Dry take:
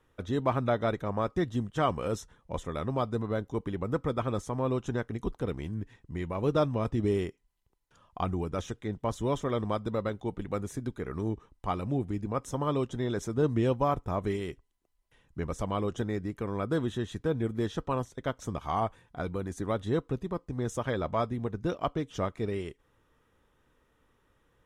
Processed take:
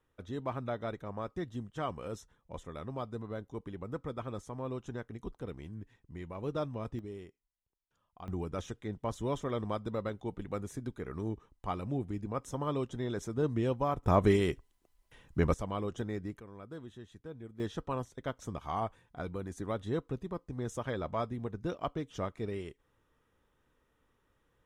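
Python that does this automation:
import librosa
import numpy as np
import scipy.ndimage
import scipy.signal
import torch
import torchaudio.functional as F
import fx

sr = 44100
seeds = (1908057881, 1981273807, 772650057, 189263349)

y = fx.gain(x, sr, db=fx.steps((0.0, -9.0), (6.99, -16.5), (8.28, -4.5), (14.03, 6.0), (15.54, -5.0), (16.4, -16.5), (17.6, -5.0)))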